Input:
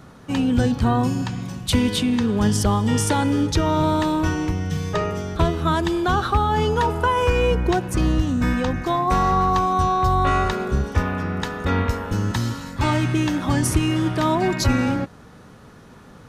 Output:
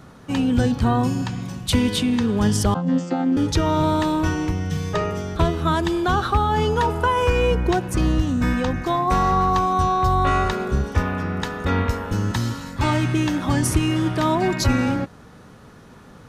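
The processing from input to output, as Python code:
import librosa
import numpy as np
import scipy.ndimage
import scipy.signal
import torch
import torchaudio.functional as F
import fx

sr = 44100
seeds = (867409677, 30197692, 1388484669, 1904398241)

y = fx.chord_vocoder(x, sr, chord='bare fifth', root=53, at=(2.74, 3.37))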